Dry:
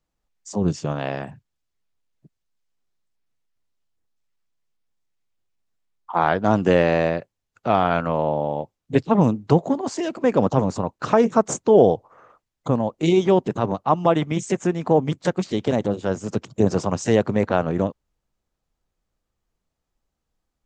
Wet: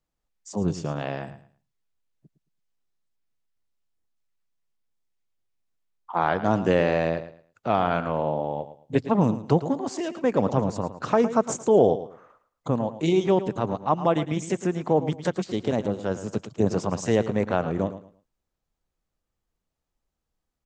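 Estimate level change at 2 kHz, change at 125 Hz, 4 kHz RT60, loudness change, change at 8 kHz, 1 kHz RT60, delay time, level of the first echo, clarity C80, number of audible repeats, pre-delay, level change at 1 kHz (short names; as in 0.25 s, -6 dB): -4.0 dB, -4.0 dB, none, -4.0 dB, -4.0 dB, none, 0.11 s, -13.0 dB, none, 2, none, -3.5 dB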